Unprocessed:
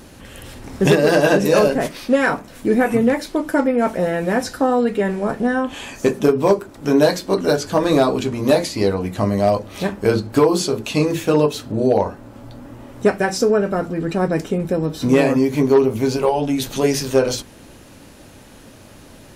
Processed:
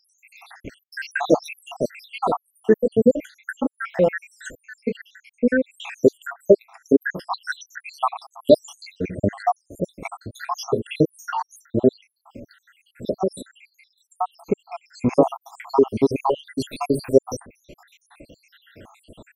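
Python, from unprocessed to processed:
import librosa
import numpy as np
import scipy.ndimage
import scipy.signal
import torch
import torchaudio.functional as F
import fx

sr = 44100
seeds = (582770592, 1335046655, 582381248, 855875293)

y = fx.spec_dropout(x, sr, seeds[0], share_pct=85)
y = fx.bass_treble(y, sr, bass_db=-5, treble_db=-8)
y = y * 10.0 ** (4.0 / 20.0)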